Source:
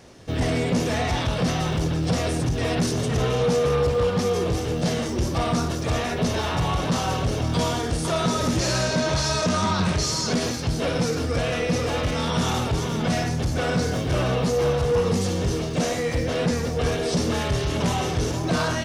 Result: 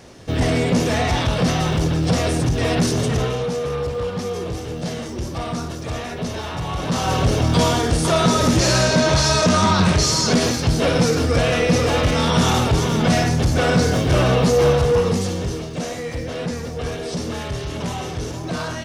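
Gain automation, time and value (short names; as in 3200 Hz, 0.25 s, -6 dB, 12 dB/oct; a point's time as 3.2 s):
3.07 s +4.5 dB
3.49 s -3 dB
6.65 s -3 dB
7.22 s +6.5 dB
14.72 s +6.5 dB
15.71 s -3 dB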